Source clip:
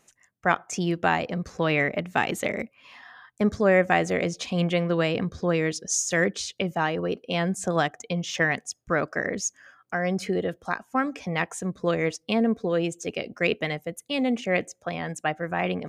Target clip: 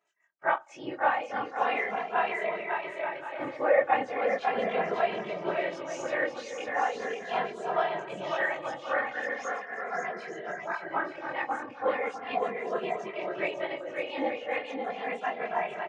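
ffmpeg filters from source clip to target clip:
-filter_complex "[0:a]afftfilt=real='re':imag='-im':win_size=2048:overlap=0.75,afftfilt=real='hypot(re,im)*cos(2*PI*random(0))':imag='hypot(re,im)*sin(2*PI*random(1))':win_size=512:overlap=0.75,dynaudnorm=f=190:g=3:m=1.68,highpass=470,lowpass=2700,aecho=1:1:550|880|1078|1197|1268:0.631|0.398|0.251|0.158|0.1,adynamicequalizer=threshold=0.00631:dfrequency=870:dqfactor=1.3:tfrequency=870:tqfactor=1.3:attack=5:release=100:ratio=0.375:range=3:mode=boostabove:tftype=bell,asplit=2[s0][s1];[s1]adelay=2.6,afreqshift=-0.38[s2];[s0][s2]amix=inputs=2:normalize=1,volume=1.33"

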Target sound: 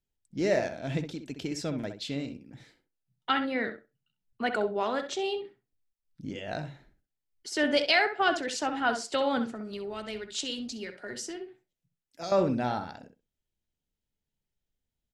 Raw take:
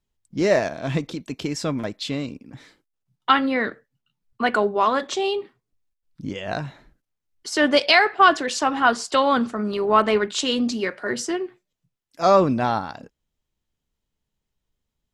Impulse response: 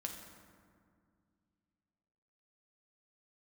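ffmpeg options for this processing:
-filter_complex "[0:a]equalizer=f=1100:t=o:w=0.3:g=-12,asettb=1/sr,asplit=3[s0][s1][s2];[s0]atrim=end=9.504[s3];[s1]atrim=start=9.5:end=12.32,asetpts=PTS-STARTPTS,afade=t=in:d=0.004:c=qsin,afade=t=out:st=2.816:d=0.004:c=qsin,acrossover=split=120|3000[s4][s5][s6];[s5]acompressor=threshold=0.0316:ratio=6[s7];[s4][s7][s6]amix=inputs=3:normalize=0[s8];[s2]atrim=start=12.316[s9];[s3][s8]acrossfade=d=0.004:c1=hsin:c2=qsin[s10];[s10][s9]acrossfade=d=0.004:c1=qsin:c2=hsin,asplit=2[s11][s12];[s12]adelay=65,lowpass=f=2500:p=1,volume=0.398,asplit=2[s13][s14];[s14]adelay=65,lowpass=f=2500:p=1,volume=0.16,asplit=2[s15][s16];[s16]adelay=65,lowpass=f=2500:p=1,volume=0.16[s17];[s11][s13][s15][s17]amix=inputs=4:normalize=0,volume=0.422"

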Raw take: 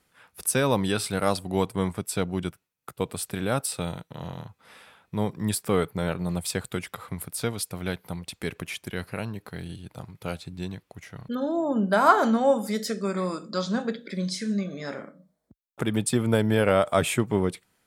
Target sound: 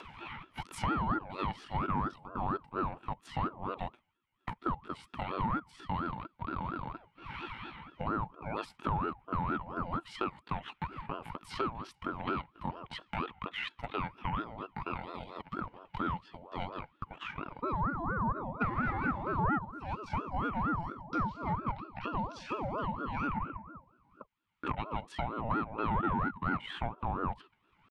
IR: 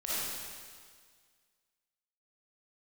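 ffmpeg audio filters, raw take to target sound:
-filter_complex "[0:a]adynamicequalizer=threshold=0.0158:dfrequency=760:dqfactor=2.4:tfrequency=760:tqfactor=2.4:attack=5:release=100:ratio=0.375:range=2:mode=boostabove:tftype=bell,asplit=3[s0][s1][s2];[s0]bandpass=f=530:t=q:w=8,volume=1[s3];[s1]bandpass=f=1840:t=q:w=8,volume=0.501[s4];[s2]bandpass=f=2480:t=q:w=8,volume=0.355[s5];[s3][s4][s5]amix=inputs=3:normalize=0,aeval=exprs='(tanh(5.62*val(0)+0.6)-tanh(0.6))/5.62':c=same,aemphasis=mode=reproduction:type=75fm,acompressor=mode=upward:threshold=0.0282:ratio=2.5,atempo=0.64,acompressor=threshold=0.02:ratio=5,aeval=exprs='val(0)*sin(2*PI*600*n/s+600*0.45/4.3*sin(2*PI*4.3*n/s))':c=same,volume=2.51"

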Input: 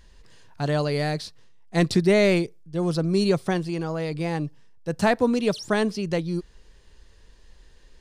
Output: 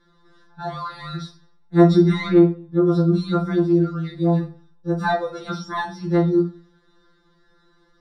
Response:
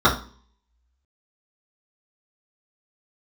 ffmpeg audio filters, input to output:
-filter_complex "[0:a]asettb=1/sr,asplit=3[s0][s1][s2];[s0]atrim=end=2.274[s3];[s1]atrim=start=2.27:end=2.87,asetpts=PTS-STARTPTS,afade=t=in:d=0.004:c=qsin,afade=t=out:st=0.596:d=0.004:c=qsin,lowpass=2500[s4];[s2]atrim=start=2.866[s5];[s3][s4]acrossfade=d=0.004:c1=hsin:c2=qsin[s6];[s6][s5]acrossfade=d=0.004:c1=qsin:c2=hsin[s7];[1:a]atrim=start_sample=2205[s8];[s7][s8]afir=irnorm=-1:irlink=0,afftfilt=real='re*2.83*eq(mod(b,8),0)':imag='im*2.83*eq(mod(b,8),0)':win_size=2048:overlap=0.75,volume=0.126"

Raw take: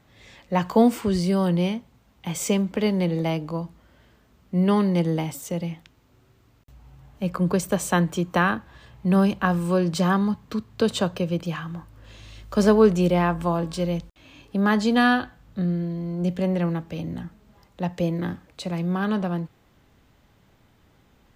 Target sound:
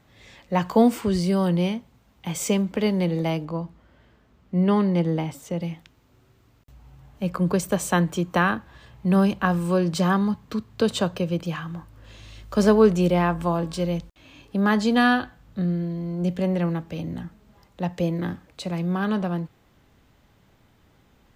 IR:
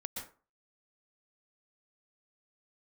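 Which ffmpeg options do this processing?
-filter_complex "[0:a]asettb=1/sr,asplit=3[s0][s1][s2];[s0]atrim=end=3.454[s3];[s1]atrim=start=3.45:end=5.61,asetpts=PTS-STARTPTS,afade=t=in:d=0.004:c=qsin,afade=t=out:st=2.156:d=0.004:c=qsin,highshelf=f=5300:g=-11[s4];[s2]atrim=start=5.606[s5];[s3][s4]acrossfade=d=0.004:c1=hsin:c2=qsin[s6];[s6][s5]acrossfade=d=0.004:c1=qsin:c2=hsin"

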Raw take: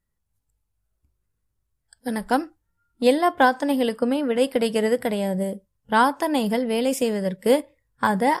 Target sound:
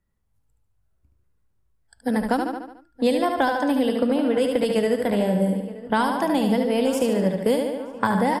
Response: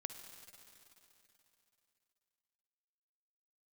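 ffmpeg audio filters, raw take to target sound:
-filter_complex "[0:a]highshelf=f=2900:g=-9.5,asplit=2[s0][s1];[s1]aecho=0:1:73|146|219|292|365|438:0.531|0.265|0.133|0.0664|0.0332|0.0166[s2];[s0][s2]amix=inputs=2:normalize=0,acrossover=split=160|3000[s3][s4][s5];[s4]acompressor=threshold=0.0708:ratio=6[s6];[s3][s6][s5]amix=inputs=3:normalize=0,asplit=2[s7][s8];[s8]adelay=924,lowpass=f=2000:p=1,volume=0.133,asplit=2[s9][s10];[s10]adelay=924,lowpass=f=2000:p=1,volume=0.54,asplit=2[s11][s12];[s12]adelay=924,lowpass=f=2000:p=1,volume=0.54,asplit=2[s13][s14];[s14]adelay=924,lowpass=f=2000:p=1,volume=0.54,asplit=2[s15][s16];[s16]adelay=924,lowpass=f=2000:p=1,volume=0.54[s17];[s9][s11][s13][s15][s17]amix=inputs=5:normalize=0[s18];[s7][s18]amix=inputs=2:normalize=0,volume=1.68"

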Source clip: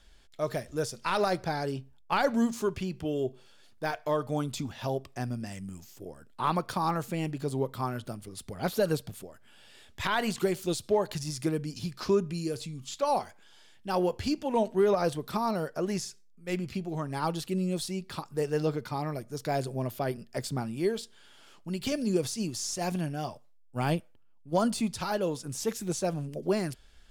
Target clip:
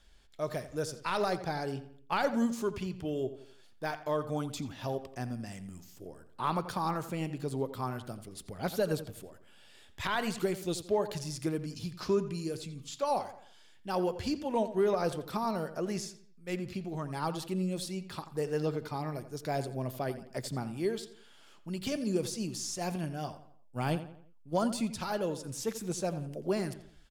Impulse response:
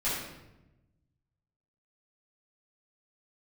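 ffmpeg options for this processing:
-filter_complex "[0:a]asplit=2[s0][s1];[s1]adelay=86,lowpass=f=3400:p=1,volume=0.237,asplit=2[s2][s3];[s3]adelay=86,lowpass=f=3400:p=1,volume=0.43,asplit=2[s4][s5];[s5]adelay=86,lowpass=f=3400:p=1,volume=0.43,asplit=2[s6][s7];[s7]adelay=86,lowpass=f=3400:p=1,volume=0.43[s8];[s0][s2][s4][s6][s8]amix=inputs=5:normalize=0,volume=0.668"

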